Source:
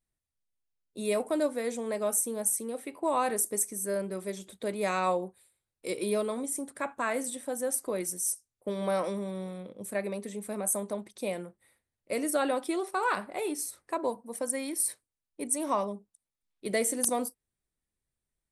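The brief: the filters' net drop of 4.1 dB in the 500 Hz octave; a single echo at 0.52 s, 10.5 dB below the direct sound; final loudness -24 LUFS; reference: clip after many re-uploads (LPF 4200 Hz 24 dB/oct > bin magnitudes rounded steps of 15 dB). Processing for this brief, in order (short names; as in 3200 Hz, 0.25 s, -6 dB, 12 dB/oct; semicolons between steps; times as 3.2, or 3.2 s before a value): LPF 4200 Hz 24 dB/oct; bell 500 Hz -5 dB; echo 0.52 s -10.5 dB; bin magnitudes rounded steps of 15 dB; gain +12 dB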